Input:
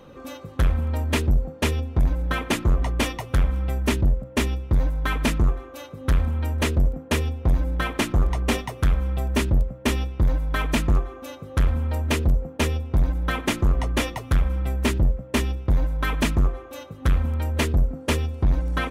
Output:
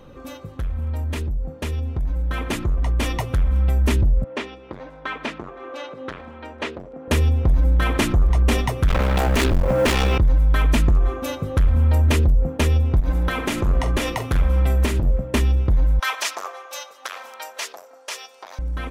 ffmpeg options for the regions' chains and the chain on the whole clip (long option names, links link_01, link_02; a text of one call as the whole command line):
ffmpeg -i in.wav -filter_complex "[0:a]asettb=1/sr,asplit=3[link_01][link_02][link_03];[link_01]atrim=end=4.244[link_04];[link_02]atrim=start=4.24:end=7.08,asetpts=PTS-STARTPTS,afade=type=in:duration=0.004:curve=qsin,afade=type=out:start_time=2.836:duration=0.004:curve=qsin,acompressor=threshold=-38dB:ratio=2:attack=3.2:release=140:knee=1:detection=peak,highpass=370,lowpass=3800[link_05];[link_03]atrim=start=7.076[link_06];[link_04][link_05]acrossfade=duration=0.004:curve1=hsin:curve2=qsin[link_07];[link_07][link_06]acrossfade=duration=0.004:curve1=qsin:curve2=hsin,asettb=1/sr,asplit=3[link_08][link_09][link_10];[link_08]atrim=end=8.884[link_11];[link_09]atrim=start=8.88:end=10.18,asetpts=PTS-STARTPTS,afade=type=in:duration=0.004:curve=qsin,afade=type=out:start_time=1.296:duration=0.004:curve=qsin,aeval=exprs='clip(val(0),-1,0.0335)':channel_layout=same,asplit=2[link_12][link_13];[link_13]highpass=frequency=720:poles=1,volume=31dB,asoftclip=type=tanh:threshold=-14dB[link_14];[link_12][link_14]amix=inputs=2:normalize=0,lowpass=frequency=4100:poles=1,volume=-6dB,acrusher=bits=8:mode=log:mix=0:aa=0.000001[link_15];[link_10]atrim=start=10.176[link_16];[link_11][link_15]acrossfade=duration=0.004:curve1=hsin:curve2=qsin[link_17];[link_17][link_16]acrossfade=duration=0.004:curve1=qsin:curve2=hsin,asettb=1/sr,asplit=3[link_18][link_19][link_20];[link_18]atrim=end=13.004[link_21];[link_19]atrim=start=13:end=15.25,asetpts=PTS-STARTPTS,afade=type=in:duration=0.004:curve=qsin,afade=type=out:start_time=2.246:duration=0.004:curve=qsin,lowshelf=frequency=120:gain=-10,acompressor=threshold=-29dB:ratio=10:attack=3.2:release=140:knee=1:detection=peak,asplit=2[link_22][link_23];[link_23]adelay=44,volume=-11dB[link_24];[link_22][link_24]amix=inputs=2:normalize=0,atrim=end_sample=99225[link_25];[link_20]atrim=start=15.246[link_26];[link_21][link_25]acrossfade=duration=0.004:curve1=hsin:curve2=qsin[link_27];[link_27][link_26]acrossfade=duration=0.004:curve1=qsin:curve2=hsin,asettb=1/sr,asplit=3[link_28][link_29][link_30];[link_28]atrim=end=15.994[link_31];[link_29]atrim=start=15.99:end=18.59,asetpts=PTS-STARTPTS,afade=type=in:duration=0.004:curve=qsin,afade=type=out:start_time=2.596:duration=0.004:curve=qsin,highpass=frequency=650:width=0.5412,highpass=frequency=650:width=1.3066,equalizer=frequency=5500:width_type=o:width=0.9:gain=10[link_32];[link_30]atrim=start=18.586[link_33];[link_31][link_32]acrossfade=duration=0.004:curve1=hsin:curve2=qsin[link_34];[link_34][link_33]acrossfade=duration=0.004:curve1=qsin:curve2=hsin,lowshelf=frequency=74:gain=10.5,alimiter=limit=-20dB:level=0:latency=1:release=98,dynaudnorm=framelen=550:gausssize=11:maxgain=9.5dB" out.wav